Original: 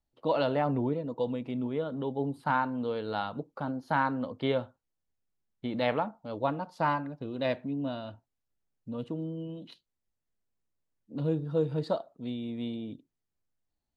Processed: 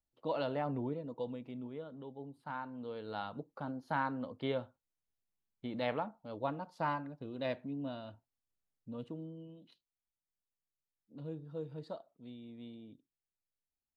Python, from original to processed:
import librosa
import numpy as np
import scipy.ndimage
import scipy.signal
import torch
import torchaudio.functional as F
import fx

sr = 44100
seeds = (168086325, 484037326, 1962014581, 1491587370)

y = fx.gain(x, sr, db=fx.line((1.13, -8.0), (2.33, -16.5), (3.28, -7.0), (8.99, -7.0), (9.63, -14.0)))